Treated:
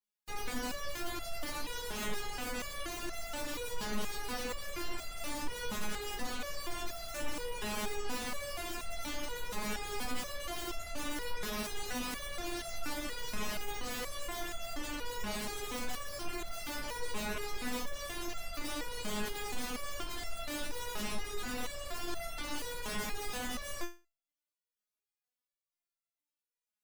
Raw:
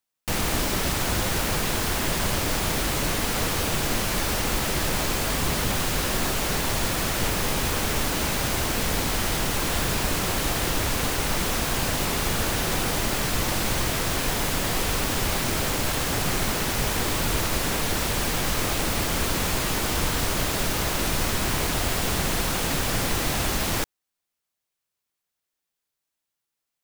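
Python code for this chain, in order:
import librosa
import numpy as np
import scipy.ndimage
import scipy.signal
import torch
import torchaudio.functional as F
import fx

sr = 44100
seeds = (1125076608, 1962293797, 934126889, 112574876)

y = fx.spec_gate(x, sr, threshold_db=-25, keep='strong')
y = fx.resonator_held(y, sr, hz=4.2, low_hz=210.0, high_hz=680.0)
y = F.gain(torch.from_numpy(y), 2.0).numpy()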